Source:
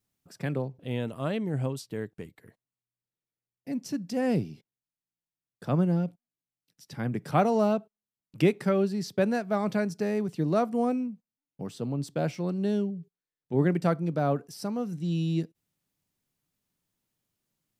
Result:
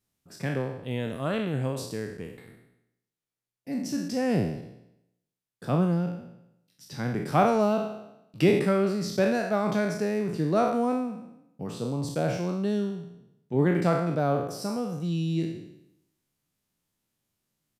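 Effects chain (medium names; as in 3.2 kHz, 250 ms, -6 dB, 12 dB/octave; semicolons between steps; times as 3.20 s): spectral sustain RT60 0.82 s; resampled via 32 kHz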